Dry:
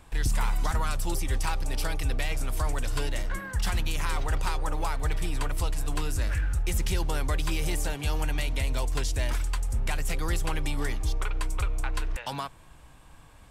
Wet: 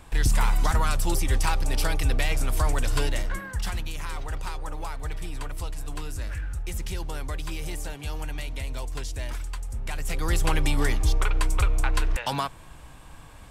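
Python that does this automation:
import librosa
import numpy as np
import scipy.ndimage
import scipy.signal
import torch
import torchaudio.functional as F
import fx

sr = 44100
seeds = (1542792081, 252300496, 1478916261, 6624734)

y = fx.gain(x, sr, db=fx.line((3.03, 4.5), (3.92, -4.5), (9.82, -4.5), (10.47, 6.0)))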